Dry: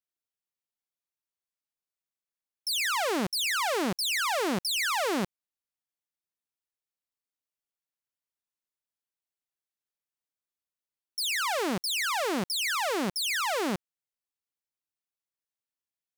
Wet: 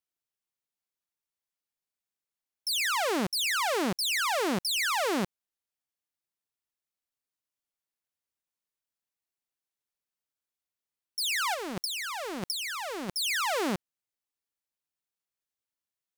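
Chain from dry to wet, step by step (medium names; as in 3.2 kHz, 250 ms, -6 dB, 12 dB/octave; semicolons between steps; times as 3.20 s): 11.54–13.16 s: compressor with a negative ratio -33 dBFS, ratio -0.5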